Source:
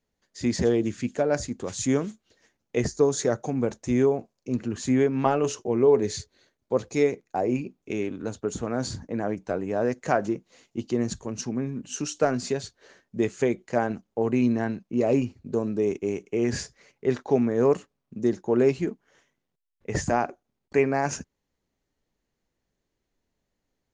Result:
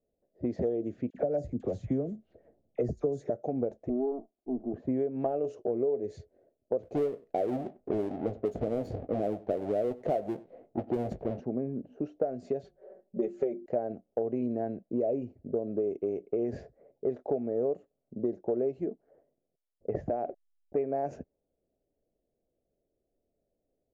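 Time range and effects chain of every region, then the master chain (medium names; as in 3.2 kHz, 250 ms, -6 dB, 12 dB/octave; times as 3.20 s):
1.10–3.30 s: tone controls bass +11 dB, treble +3 dB + phase dispersion lows, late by 47 ms, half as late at 1.2 kHz + tape noise reduction on one side only encoder only
3.89–4.74 s: comb filter that takes the minimum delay 0.43 ms + Chebyshev low-pass 960 Hz + static phaser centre 520 Hz, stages 6
6.83–11.40 s: square wave that keeps the level + doubling 19 ms -13.5 dB + delay 96 ms -24 dB
12.64–13.66 s: peaking EQ 85 Hz -8.5 dB 1.5 oct + hum notches 50/100/150/200/250/300/350 Hz + comb 5.3 ms, depth 95%
19.95–20.77 s: compression 3:1, threshold -24 dBFS + hysteresis with a dead band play -46.5 dBFS
whole clip: FFT filter 190 Hz 0 dB, 660 Hz +13 dB, 980 Hz -10 dB, 2.1 kHz -11 dB, 5.5 kHz -19 dB; level-controlled noise filter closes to 700 Hz, open at -14 dBFS; compression 6:1, threshold -23 dBFS; trim -4.5 dB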